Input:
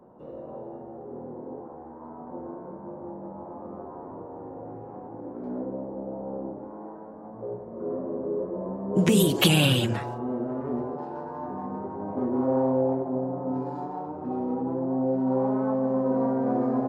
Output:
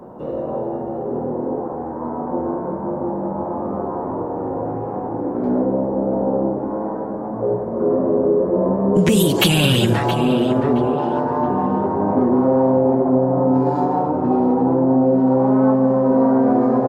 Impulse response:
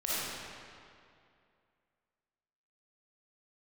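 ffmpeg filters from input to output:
-filter_complex "[0:a]acompressor=threshold=-28dB:ratio=4,apsyclip=22.5dB,asplit=2[link_01][link_02];[link_02]adelay=671,lowpass=frequency=3500:poles=1,volume=-10dB,asplit=2[link_03][link_04];[link_04]adelay=671,lowpass=frequency=3500:poles=1,volume=0.25,asplit=2[link_05][link_06];[link_06]adelay=671,lowpass=frequency=3500:poles=1,volume=0.25[link_07];[link_03][link_05][link_07]amix=inputs=3:normalize=0[link_08];[link_01][link_08]amix=inputs=2:normalize=0,volume=-7.5dB"

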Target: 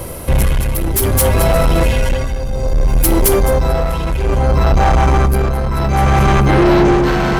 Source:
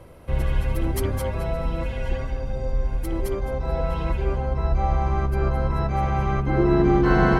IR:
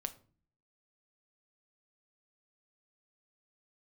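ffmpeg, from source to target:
-filter_complex "[0:a]asplit=2[link_01][link_02];[link_02]aderivative[link_03];[1:a]atrim=start_sample=2205,highshelf=frequency=2400:gain=7.5[link_04];[link_03][link_04]afir=irnorm=-1:irlink=0,volume=5.5dB[link_05];[link_01][link_05]amix=inputs=2:normalize=0,asoftclip=type=tanh:threshold=-23dB,tremolo=f=0.62:d=0.63,apsyclip=27dB,areverse,acompressor=mode=upward:threshold=-21dB:ratio=2.5,areverse,volume=-8dB"

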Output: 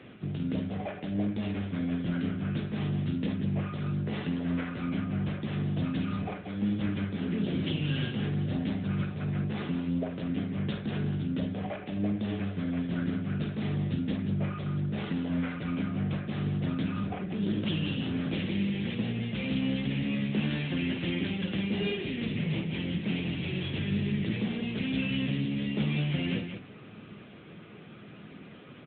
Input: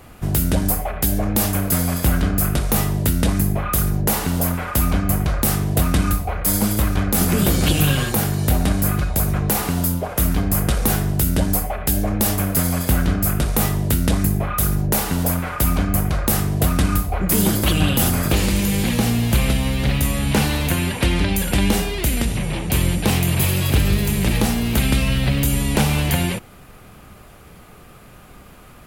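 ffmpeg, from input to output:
ffmpeg -i in.wav -filter_complex "[0:a]highpass=150,equalizer=frequency=930:width_type=o:width=1.4:gain=-12,areverse,acompressor=threshold=-29dB:ratio=6,areverse,asplit=2[link_01][link_02];[link_02]adelay=19,volume=-12dB[link_03];[link_01][link_03]amix=inputs=2:normalize=0,aecho=1:1:49.56|183.7:0.398|0.398,volume=1.5dB" -ar 8000 -c:a libopencore_amrnb -b:a 10200 out.amr

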